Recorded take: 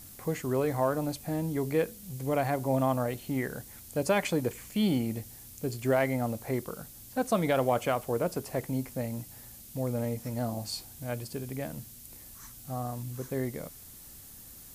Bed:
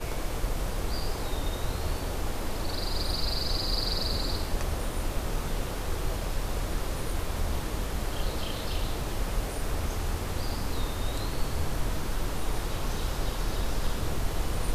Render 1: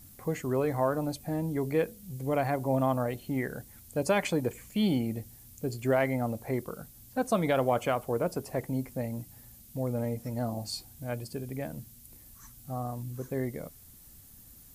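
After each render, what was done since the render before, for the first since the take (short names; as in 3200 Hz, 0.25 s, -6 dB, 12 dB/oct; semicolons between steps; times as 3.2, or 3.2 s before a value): denoiser 7 dB, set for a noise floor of -49 dBFS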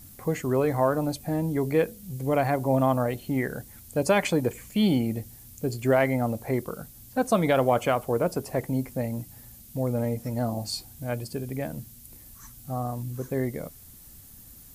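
gain +4.5 dB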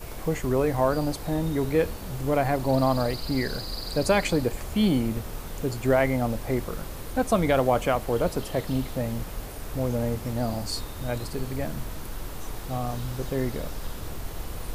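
add bed -5.5 dB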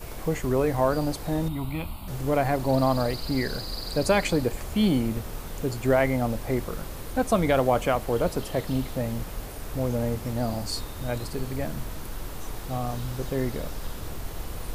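1.48–2.08 fixed phaser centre 1700 Hz, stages 6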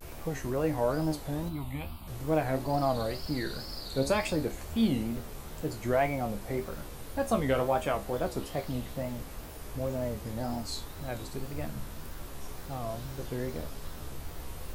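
resonator 73 Hz, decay 0.24 s, harmonics all, mix 80%; wow and flutter 140 cents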